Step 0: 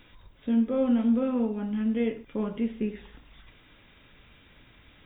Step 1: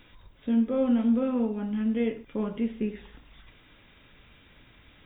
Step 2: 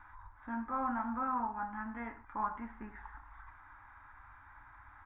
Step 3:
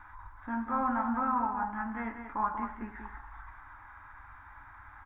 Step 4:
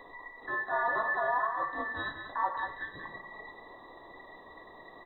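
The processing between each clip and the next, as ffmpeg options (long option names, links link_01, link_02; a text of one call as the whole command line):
ffmpeg -i in.wav -af anull out.wav
ffmpeg -i in.wav -af "firequalizer=gain_entry='entry(100,0);entry(150,-21);entry(300,-9);entry(450,-24);entry(850,14);entry(1600,9);entry(2900,-25);entry(6400,-18)':delay=0.05:min_phase=1,volume=-2.5dB" out.wav
ffmpeg -i in.wav -af "aecho=1:1:189:0.422,volume=4.5dB" out.wav
ffmpeg -i in.wav -af "afftfilt=real='real(if(between(b,1,1012),(2*floor((b-1)/92)+1)*92-b,b),0)':imag='imag(if(between(b,1,1012),(2*floor((b-1)/92)+1)*92-b,b),0)*if(between(b,1,1012),-1,1)':win_size=2048:overlap=0.75" out.wav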